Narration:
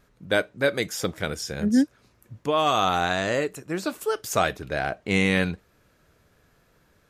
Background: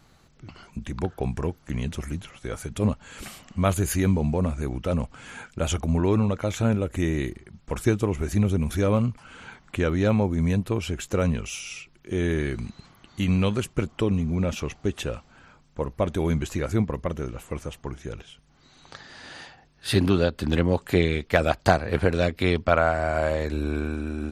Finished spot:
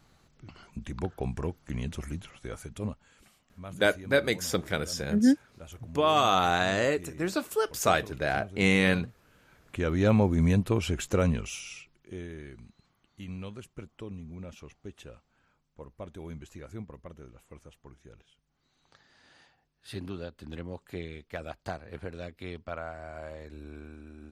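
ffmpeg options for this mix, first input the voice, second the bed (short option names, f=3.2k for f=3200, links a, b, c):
-filter_complex "[0:a]adelay=3500,volume=-1.5dB[a];[1:a]volume=15.5dB,afade=t=out:st=2.33:d=0.88:silence=0.158489,afade=t=in:st=9.49:d=0.66:silence=0.0944061,afade=t=out:st=11.02:d=1.26:silence=0.141254[b];[a][b]amix=inputs=2:normalize=0"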